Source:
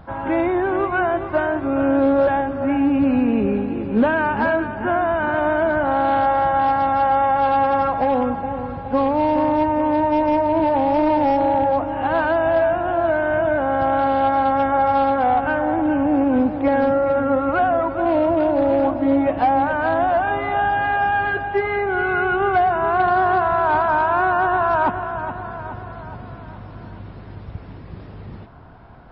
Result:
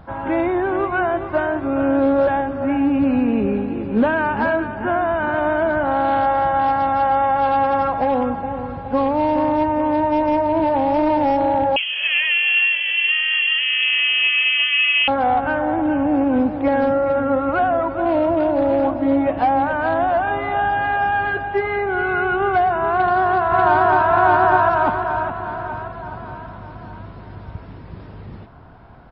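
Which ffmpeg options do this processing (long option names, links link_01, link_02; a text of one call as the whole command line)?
ffmpeg -i in.wav -filter_complex "[0:a]asettb=1/sr,asplit=3[link_01][link_02][link_03];[link_01]atrim=end=11.764[link_04];[link_02]atrim=start=11.76:end=15.08,asetpts=PTS-STARTPTS,afade=type=in:duration=0.004:curve=qsin,afade=type=out:start_time=3.316:duration=0.004:curve=qsin,lowpass=frequency=2900:width_type=q:width=0.5098,lowpass=frequency=2900:width_type=q:width=0.6013,lowpass=frequency=2900:width_type=q:width=0.9,lowpass=frequency=2900:width_type=q:width=2.563,afreqshift=-3400[link_05];[link_03]atrim=start=15.076[link_06];[link_04][link_05]acrossfade=duration=0.004:curve1=hsin:curve2=qsin[link_07];[link_07][link_06]acrossfade=duration=0.004:curve1=qsin:curve2=hsin,asplit=2[link_08][link_09];[link_09]afade=type=in:start_time=22.92:duration=0.01,afade=type=out:start_time=24.1:duration=0.01,aecho=0:1:590|1180|1770|2360|2950|3540|4130:0.944061|0.47203|0.236015|0.118008|0.0590038|0.0295019|0.014751[link_10];[link_08][link_10]amix=inputs=2:normalize=0" out.wav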